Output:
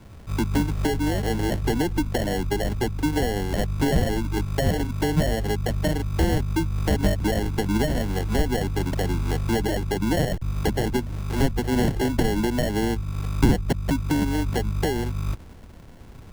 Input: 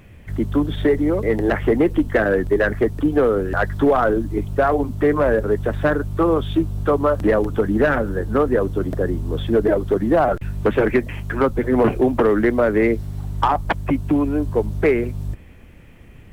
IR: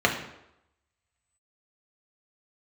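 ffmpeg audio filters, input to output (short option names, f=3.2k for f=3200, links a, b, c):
-filter_complex "[0:a]highshelf=f=1.5k:t=q:w=3:g=-12.5,acrusher=samples=36:mix=1:aa=0.000001,acrossover=split=230[a][b];[b]acompressor=threshold=-28dB:ratio=3[c];[a][c]amix=inputs=2:normalize=0"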